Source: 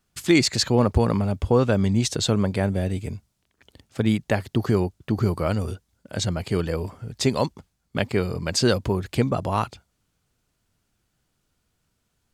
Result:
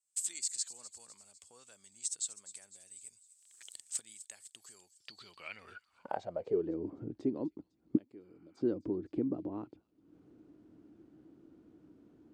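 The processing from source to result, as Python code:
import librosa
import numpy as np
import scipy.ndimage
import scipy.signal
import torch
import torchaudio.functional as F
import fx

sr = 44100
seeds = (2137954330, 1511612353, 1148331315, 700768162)

y = fx.recorder_agc(x, sr, target_db=-14.0, rise_db_per_s=57.0, max_gain_db=30)
y = fx.spec_repair(y, sr, seeds[0], start_s=8.26, length_s=0.32, low_hz=670.0, high_hz=3100.0, source='before')
y = fx.pre_emphasis(y, sr, coefficient=0.9, at=(7.96, 8.56), fade=0.02)
y = fx.filter_sweep_bandpass(y, sr, from_hz=8000.0, to_hz=310.0, start_s=4.77, end_s=6.73, q=7.8)
y = fx.echo_wet_highpass(y, sr, ms=252, feedback_pct=51, hz=4300.0, wet_db=-13.5)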